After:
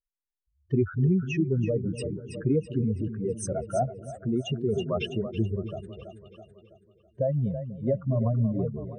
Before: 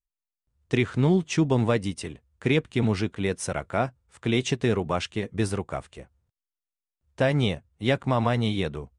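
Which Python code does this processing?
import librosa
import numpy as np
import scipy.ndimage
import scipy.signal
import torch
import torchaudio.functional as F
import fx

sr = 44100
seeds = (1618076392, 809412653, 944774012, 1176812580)

y = fx.spec_expand(x, sr, power=3.5)
y = fx.echo_split(y, sr, split_hz=400.0, low_ms=246, high_ms=328, feedback_pct=52, wet_db=-10.0)
y = fx.rotary(y, sr, hz=0.75)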